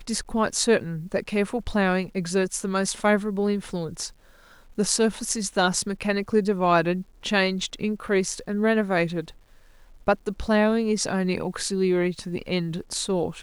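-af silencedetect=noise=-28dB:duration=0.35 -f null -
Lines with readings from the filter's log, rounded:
silence_start: 4.07
silence_end: 4.78 | silence_duration: 0.71
silence_start: 9.28
silence_end: 10.08 | silence_duration: 0.80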